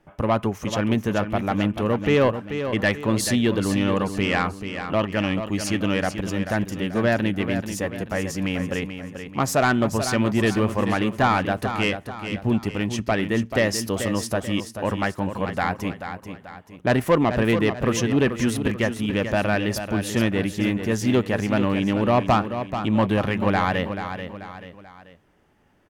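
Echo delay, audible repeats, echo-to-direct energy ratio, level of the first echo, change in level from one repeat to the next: 436 ms, 3, -8.0 dB, -9.0 dB, -7.5 dB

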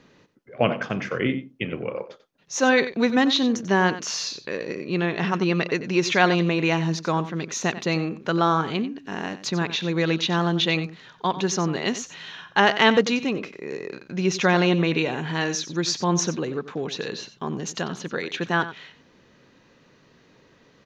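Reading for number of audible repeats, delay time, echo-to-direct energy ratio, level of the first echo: 1, 92 ms, -13.5 dB, -13.5 dB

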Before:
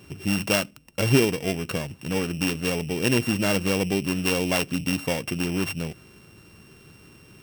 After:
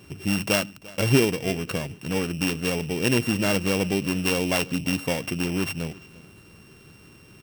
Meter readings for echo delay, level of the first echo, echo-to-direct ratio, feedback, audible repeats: 344 ms, -21.0 dB, -20.5 dB, 30%, 2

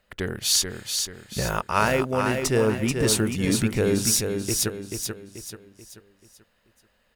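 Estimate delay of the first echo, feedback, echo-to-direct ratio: 435 ms, 41%, -4.5 dB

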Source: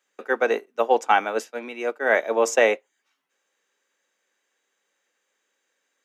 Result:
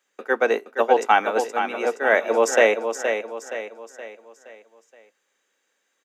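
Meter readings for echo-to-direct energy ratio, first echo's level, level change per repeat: -6.5 dB, -7.5 dB, -7.0 dB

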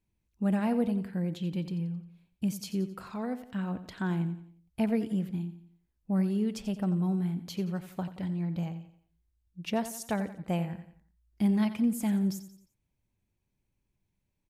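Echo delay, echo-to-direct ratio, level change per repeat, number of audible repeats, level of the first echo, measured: 88 ms, -12.0 dB, -7.5 dB, 4, -13.0 dB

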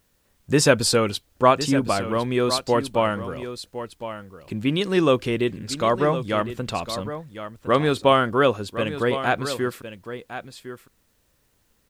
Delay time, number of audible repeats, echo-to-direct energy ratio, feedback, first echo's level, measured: 1058 ms, 1, -11.5 dB, no regular repeats, -11.5 dB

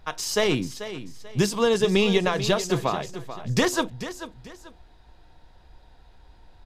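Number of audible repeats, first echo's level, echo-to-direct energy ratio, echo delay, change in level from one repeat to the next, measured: 2, -12.5 dB, -12.0 dB, 438 ms, -10.0 dB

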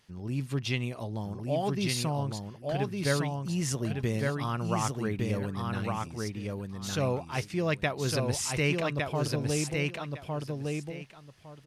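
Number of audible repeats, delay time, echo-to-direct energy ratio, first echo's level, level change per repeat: 2, 1158 ms, -3.0 dB, -3.0 dB, -14.5 dB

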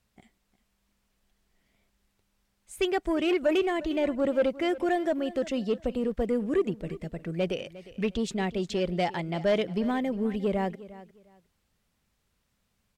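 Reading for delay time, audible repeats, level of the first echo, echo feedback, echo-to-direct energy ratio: 355 ms, 2, -17.5 dB, 22%, -17.5 dB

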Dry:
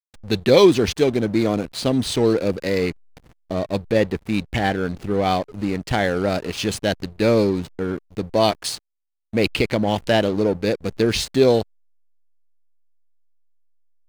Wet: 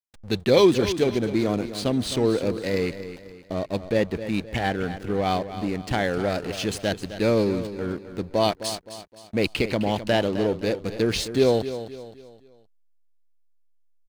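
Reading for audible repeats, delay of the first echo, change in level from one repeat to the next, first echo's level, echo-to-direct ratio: 3, 260 ms, -8.0 dB, -12.0 dB, -11.5 dB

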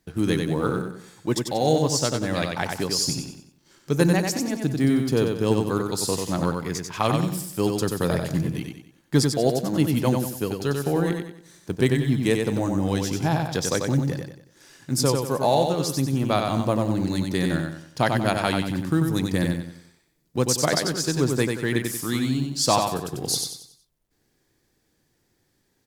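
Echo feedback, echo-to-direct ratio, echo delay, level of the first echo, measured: 38%, -4.0 dB, 93 ms, -4.5 dB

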